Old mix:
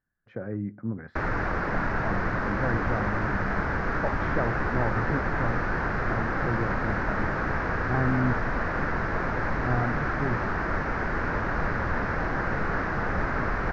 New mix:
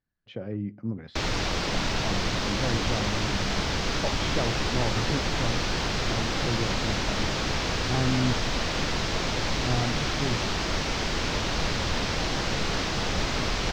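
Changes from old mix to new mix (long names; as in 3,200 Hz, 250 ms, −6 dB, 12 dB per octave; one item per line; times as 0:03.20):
background: remove high-frequency loss of the air 140 metres
master: add high shelf with overshoot 2,300 Hz +12.5 dB, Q 3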